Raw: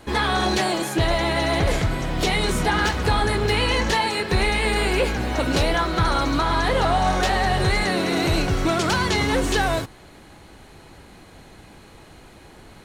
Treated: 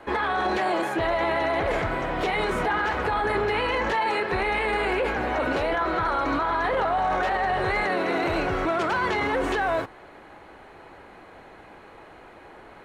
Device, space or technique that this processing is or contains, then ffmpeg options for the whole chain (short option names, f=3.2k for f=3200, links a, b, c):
DJ mixer with the lows and highs turned down: -filter_complex "[0:a]acrossover=split=350 2400:gain=0.2 1 0.112[a][b][c];[a][b][c]amix=inputs=3:normalize=0,alimiter=limit=-21dB:level=0:latency=1:release=12,volume=4dB"